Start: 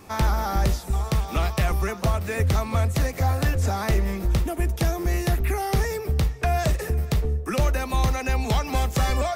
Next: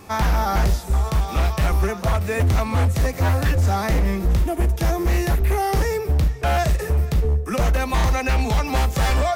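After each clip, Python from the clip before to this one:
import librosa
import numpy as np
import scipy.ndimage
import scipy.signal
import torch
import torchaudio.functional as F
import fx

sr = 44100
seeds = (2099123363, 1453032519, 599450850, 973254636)

y = fx.hpss(x, sr, part='harmonic', gain_db=9)
y = 10.0 ** (-10.0 / 20.0) * (np.abs((y / 10.0 ** (-10.0 / 20.0) + 3.0) % 4.0 - 2.0) - 1.0)
y = F.gain(torch.from_numpy(y), -3.0).numpy()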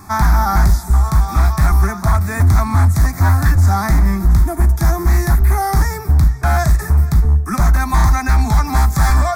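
y = fx.fixed_phaser(x, sr, hz=1200.0, stages=4)
y = F.gain(torch.from_numpy(y), 7.5).numpy()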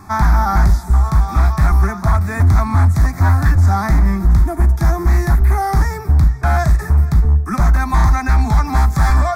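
y = fx.high_shelf(x, sr, hz=5500.0, db=-9.5)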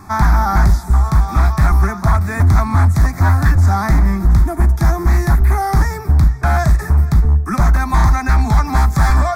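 y = fx.hpss(x, sr, part='percussive', gain_db=3)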